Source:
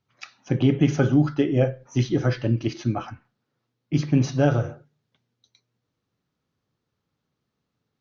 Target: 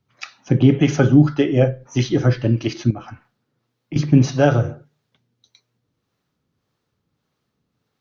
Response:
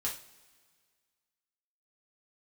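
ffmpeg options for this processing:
-filter_complex "[0:a]asettb=1/sr,asplit=3[link_01][link_02][link_03];[link_01]atrim=end=2.904[link_04];[link_02]atrim=start=2.9:end=3.96,asetpts=PTS-STARTPTS,afade=type=in:duration=0.004:curve=qsin,afade=type=out:start_time=1.056:duration=0.004:curve=qsin,acompressor=threshold=-32dB:ratio=10[link_05];[link_03]atrim=start=3.956[link_06];[link_04][link_05]acrossfade=duration=0.004:curve1=hsin:curve2=qsin[link_07];[link_07][link_06]acrossfade=duration=0.004:curve1=qsin:curve2=hsin,acrossover=split=420[link_08][link_09];[link_08]aeval=exprs='val(0)*(1-0.5/2+0.5/2*cos(2*PI*1.7*n/s))':channel_layout=same[link_10];[link_09]aeval=exprs='val(0)*(1-0.5/2-0.5/2*cos(2*PI*1.7*n/s))':channel_layout=same[link_11];[link_10][link_11]amix=inputs=2:normalize=0,volume=7.5dB"

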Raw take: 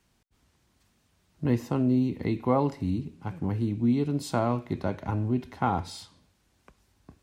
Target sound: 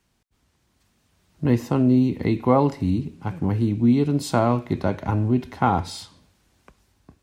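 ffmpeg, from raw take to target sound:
ffmpeg -i in.wav -af "dynaudnorm=framelen=470:gausssize=5:maxgain=7dB" out.wav

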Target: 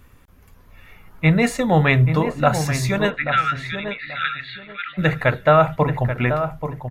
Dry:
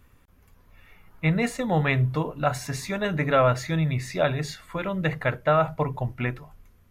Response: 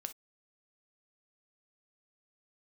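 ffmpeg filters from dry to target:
-filter_complex "[0:a]asplit=3[link_01][link_02][link_03];[link_01]afade=type=out:start_time=3.09:duration=0.02[link_04];[link_02]asuperpass=centerf=2300:order=20:qfactor=0.82,afade=type=in:start_time=3.09:duration=0.02,afade=type=out:start_time=4.97:duration=0.02[link_05];[link_03]afade=type=in:start_time=4.97:duration=0.02[link_06];[link_04][link_05][link_06]amix=inputs=3:normalize=0,asplit=2[link_07][link_08];[link_08]adelay=833,lowpass=frequency=1800:poles=1,volume=-8dB,asplit=2[link_09][link_10];[link_10]adelay=833,lowpass=frequency=1800:poles=1,volume=0.23,asplit=2[link_11][link_12];[link_12]adelay=833,lowpass=frequency=1800:poles=1,volume=0.23[link_13];[link_07][link_09][link_11][link_13]amix=inputs=4:normalize=0,volume=7dB"

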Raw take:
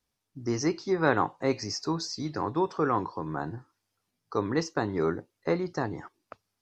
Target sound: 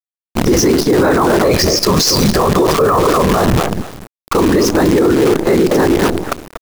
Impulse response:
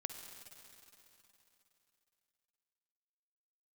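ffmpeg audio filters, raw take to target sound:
-filter_complex "[0:a]asettb=1/sr,asplit=3[link_01][link_02][link_03];[link_01]atrim=end=1.374[link_04];[link_02]atrim=start=1.37:end=3.57,asetpts=PTS-STARTPTS,afade=type=in:duration=0.004:curve=qsin,afade=type=out:start_time=2.196:duration=0.004:curve=qsin,aecho=1:1:1.7:0.88,atrim=end_sample=97020[link_05];[link_03]atrim=start=3.566[link_06];[link_04][link_05]acrossfade=duration=0.004:curve1=hsin:curve2=qsin[link_07];[link_07][link_06]acrossfade=duration=0.004:curve1=qsin:curve2=hsin,asplit=2[link_08][link_09];[link_09]adelay=239,lowpass=frequency=1300:poles=1,volume=-8.5dB,asplit=2[link_10][link_11];[link_11]adelay=239,lowpass=frequency=1300:poles=1,volume=0.18,asplit=2[link_12][link_13];[link_13]adelay=239,lowpass=frequency=1300:poles=1,volume=0.18[link_14];[link_08][link_10][link_12][link_14]amix=inputs=4:normalize=0,afftfilt=real='hypot(re,im)*cos(2*PI*random(0))':imag='hypot(re,im)*sin(2*PI*random(1))':win_size=512:overlap=0.75,acrusher=bits=8:dc=4:mix=0:aa=0.000001,acontrast=89,adynamicequalizer=threshold=0.0112:dfrequency=350:dqfactor=1.4:tfrequency=350:tqfactor=1.4:attack=5:release=100:ratio=0.375:range=3.5:mode=boostabove:tftype=bell,alimiter=level_in=31.5dB:limit=-1dB:release=50:level=0:latency=1,volume=-3.5dB"

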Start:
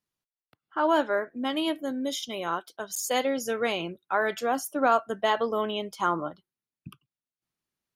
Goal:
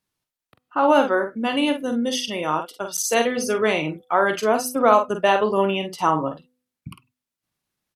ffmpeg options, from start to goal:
ffmpeg -i in.wav -filter_complex "[0:a]asplit=2[link_01][link_02];[link_02]adelay=47,volume=-7.5dB[link_03];[link_01][link_03]amix=inputs=2:normalize=0,asetrate=40440,aresample=44100,atempo=1.09051,bandreject=frequency=250.6:width_type=h:width=4,bandreject=frequency=501.2:width_type=h:width=4,bandreject=frequency=751.8:width_type=h:width=4,volume=6.5dB" out.wav

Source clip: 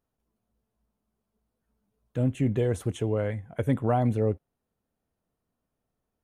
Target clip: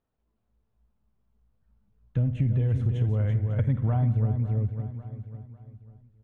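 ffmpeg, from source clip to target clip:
ffmpeg -i in.wav -filter_complex "[0:a]lowpass=3400,asplit=2[link_01][link_02];[link_02]aecho=0:1:549|1098|1647:0.119|0.0416|0.0146[link_03];[link_01][link_03]amix=inputs=2:normalize=0,asubboost=boost=11:cutoff=130,asplit=2[link_04][link_05];[link_05]aecho=0:1:51|83|181|335:0.188|0.15|0.15|0.447[link_06];[link_04][link_06]amix=inputs=2:normalize=0,acompressor=threshold=-22dB:ratio=5" out.wav

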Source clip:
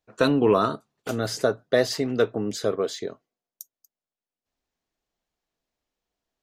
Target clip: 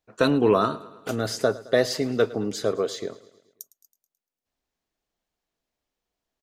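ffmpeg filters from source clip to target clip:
ffmpeg -i in.wav -af "aecho=1:1:108|216|324|432|540:0.112|0.064|0.0365|0.0208|0.0118" out.wav

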